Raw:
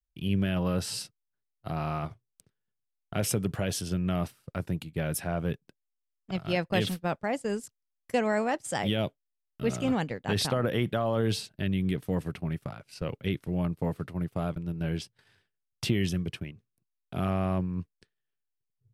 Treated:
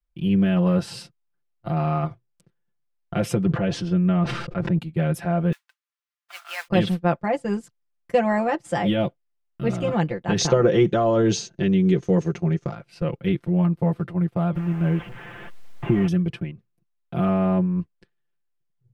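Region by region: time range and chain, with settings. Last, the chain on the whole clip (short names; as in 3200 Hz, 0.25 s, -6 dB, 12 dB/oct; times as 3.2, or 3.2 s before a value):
3.43–4.79 air absorption 130 m + notch 740 Hz, Q 17 + sustainer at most 48 dB/s
5.52–6.68 modulation noise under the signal 12 dB + HPF 1100 Hz 24 dB/oct
10.38–12.75 synth low-pass 6400 Hz, resonance Q 13 + bell 410 Hz +9 dB 0.49 oct
14.55–16.08 delta modulation 16 kbps, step -38 dBFS + requantised 10-bit, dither triangular
whole clip: LPF 1600 Hz 6 dB/oct; comb 5.8 ms, depth 89%; gain +5 dB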